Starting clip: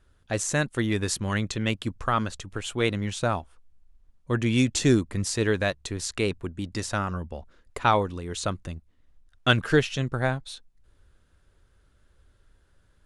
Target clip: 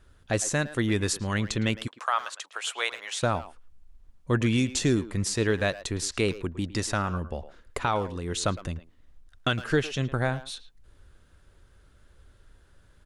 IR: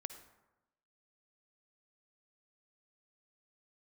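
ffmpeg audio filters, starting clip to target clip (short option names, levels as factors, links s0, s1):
-filter_complex "[0:a]asplit=3[s0][s1][s2];[s0]afade=t=out:st=1.86:d=0.02[s3];[s1]highpass=f=660:w=0.5412,highpass=f=660:w=1.3066,afade=t=in:st=1.86:d=0.02,afade=t=out:st=3.22:d=0.02[s4];[s2]afade=t=in:st=3.22:d=0.02[s5];[s3][s4][s5]amix=inputs=3:normalize=0,asplit=2[s6][s7];[s7]acompressor=threshold=0.0141:ratio=6,volume=0.75[s8];[s6][s8]amix=inputs=2:normalize=0,alimiter=limit=0.224:level=0:latency=1:release=450,asplit=2[s9][s10];[s10]adelay=110,highpass=300,lowpass=3400,asoftclip=type=hard:threshold=0.0841,volume=0.224[s11];[s9][s11]amix=inputs=2:normalize=0"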